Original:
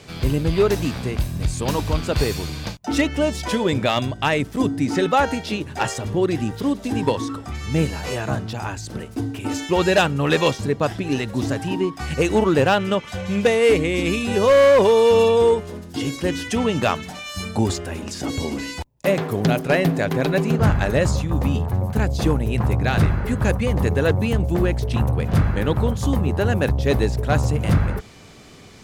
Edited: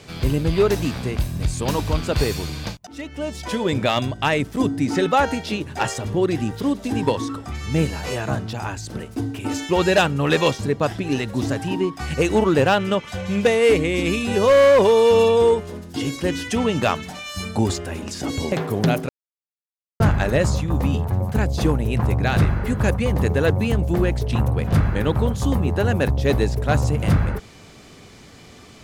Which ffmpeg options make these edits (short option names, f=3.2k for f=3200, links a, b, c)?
-filter_complex "[0:a]asplit=5[a][b][c][d][e];[a]atrim=end=2.87,asetpts=PTS-STARTPTS,afade=t=out:st=2.866:d=0.004:c=hsin:silence=0.0668344[f];[b]atrim=start=2.87:end=18.522,asetpts=PTS-STARTPTS,afade=t=in:d=0.95:silence=0.0668344[g];[c]atrim=start=19.128:end=19.7,asetpts=PTS-STARTPTS,afade=t=out:st=0.568:d=0.004:c=hsin[h];[d]atrim=start=19.7:end=20.61,asetpts=PTS-STARTPTS,volume=0[i];[e]atrim=start=20.61,asetpts=PTS-STARTPTS,afade=t=in:d=0.004:c=hsin[j];[f][g]concat=n=2:v=0:a=1[k];[h][i][j]concat=n=3:v=0:a=1[l];[k][l]acrossfade=d=0.004:c1=hsin:c2=hsin"